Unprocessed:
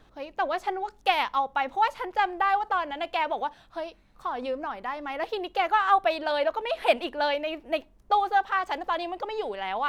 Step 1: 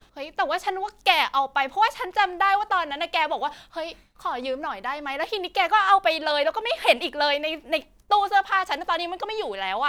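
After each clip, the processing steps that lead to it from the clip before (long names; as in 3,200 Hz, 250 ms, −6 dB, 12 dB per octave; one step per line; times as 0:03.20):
downward expander −52 dBFS
high-shelf EQ 2,100 Hz +9.5 dB
reversed playback
upward compression, threshold −33 dBFS
reversed playback
level +1.5 dB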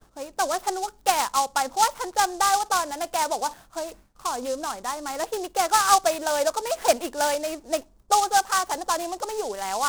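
tape wow and flutter 21 cents
flat-topped bell 4,000 Hz −9 dB 2.4 octaves
short delay modulated by noise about 5,900 Hz, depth 0.061 ms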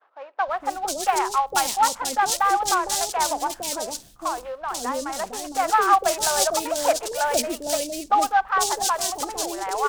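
three-band delay without the direct sound mids, lows, highs 460/490 ms, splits 570/2,600 Hz
level +3 dB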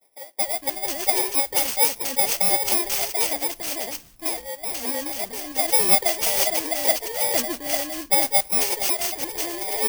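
samples in bit-reversed order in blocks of 32 samples
noise that follows the level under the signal 17 dB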